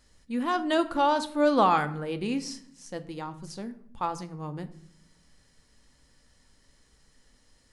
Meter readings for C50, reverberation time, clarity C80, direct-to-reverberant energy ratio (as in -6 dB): 15.0 dB, 0.65 s, 18.5 dB, 10.0 dB